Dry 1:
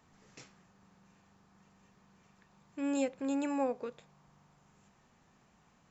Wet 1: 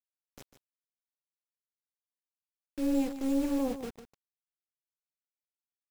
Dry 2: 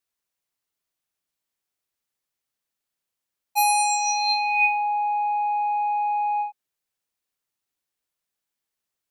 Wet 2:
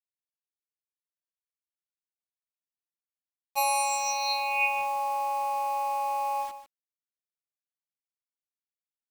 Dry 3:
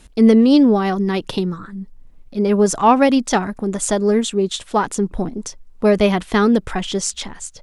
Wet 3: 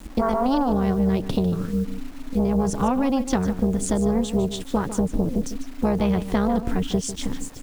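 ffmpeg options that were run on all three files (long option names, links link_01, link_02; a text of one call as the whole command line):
ffmpeg -i in.wav -filter_complex "[0:a]acrossover=split=310|2000[link_01][link_02][link_03];[link_01]aeval=exprs='0.473*sin(PI/2*3.55*val(0)/0.473)':channel_layout=same[link_04];[link_04][link_02][link_03]amix=inputs=3:normalize=0,tremolo=f=270:d=0.75,acrusher=bits=6:mix=0:aa=0.000001,acompressor=threshold=-15dB:ratio=6,aecho=1:1:149:0.251,volume=-3dB" out.wav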